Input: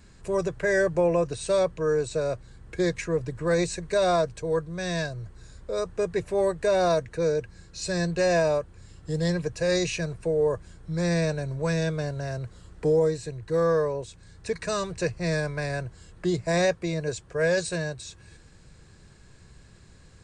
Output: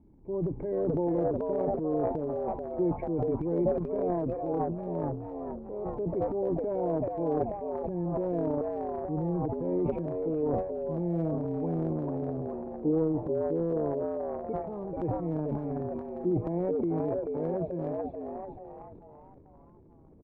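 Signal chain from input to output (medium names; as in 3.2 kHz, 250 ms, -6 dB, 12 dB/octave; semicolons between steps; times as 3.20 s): cascade formant filter u; frequency-shifting echo 434 ms, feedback 41%, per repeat +100 Hz, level -4 dB; transient shaper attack -1 dB, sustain +12 dB; trim +5.5 dB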